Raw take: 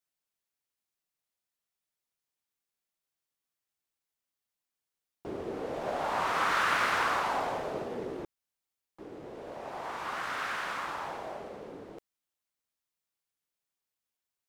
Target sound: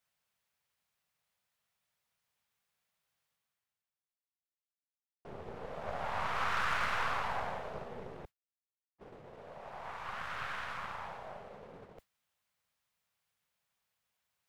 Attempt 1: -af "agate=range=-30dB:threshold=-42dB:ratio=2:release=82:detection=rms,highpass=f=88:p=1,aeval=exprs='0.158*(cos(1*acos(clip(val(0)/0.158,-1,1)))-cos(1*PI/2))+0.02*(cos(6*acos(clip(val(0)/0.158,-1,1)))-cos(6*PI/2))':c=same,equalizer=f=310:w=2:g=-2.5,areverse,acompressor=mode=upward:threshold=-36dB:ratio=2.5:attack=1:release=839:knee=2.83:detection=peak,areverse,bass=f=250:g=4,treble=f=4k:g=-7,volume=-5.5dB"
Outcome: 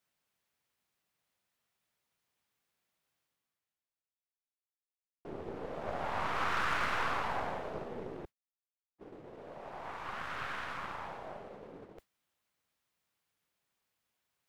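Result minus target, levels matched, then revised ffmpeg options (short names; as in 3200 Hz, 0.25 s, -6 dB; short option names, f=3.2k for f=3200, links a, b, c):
250 Hz band +5.5 dB
-af "agate=range=-30dB:threshold=-42dB:ratio=2:release=82:detection=rms,highpass=f=88:p=1,aeval=exprs='0.158*(cos(1*acos(clip(val(0)/0.158,-1,1)))-cos(1*PI/2))+0.02*(cos(6*acos(clip(val(0)/0.158,-1,1)))-cos(6*PI/2))':c=same,equalizer=f=310:w=2:g=-13.5,areverse,acompressor=mode=upward:threshold=-36dB:ratio=2.5:attack=1:release=839:knee=2.83:detection=peak,areverse,bass=f=250:g=4,treble=f=4k:g=-7,volume=-5.5dB"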